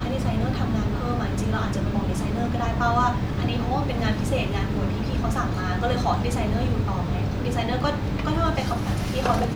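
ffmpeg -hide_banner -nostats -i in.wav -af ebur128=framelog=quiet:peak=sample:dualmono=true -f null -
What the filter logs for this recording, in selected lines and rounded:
Integrated loudness:
  I:         -21.8 LUFS
  Threshold: -31.7 LUFS
Loudness range:
  LRA:         0.6 LU
  Threshold: -41.7 LUFS
  LRA low:   -22.0 LUFS
  LRA high:  -21.4 LUFS
Sample peak:
  Peak:       -8.2 dBFS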